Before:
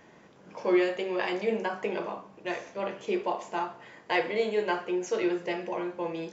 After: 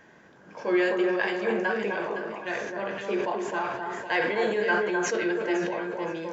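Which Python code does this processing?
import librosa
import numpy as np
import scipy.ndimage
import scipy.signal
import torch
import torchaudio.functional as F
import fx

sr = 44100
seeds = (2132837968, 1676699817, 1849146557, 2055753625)

p1 = fx.peak_eq(x, sr, hz=1600.0, db=11.5, octaves=0.22)
p2 = p1 + fx.echo_alternate(p1, sr, ms=257, hz=1600.0, feedback_pct=54, wet_db=-3.5, dry=0)
p3 = fx.sustainer(p2, sr, db_per_s=34.0)
y = F.gain(torch.from_numpy(p3), -1.0).numpy()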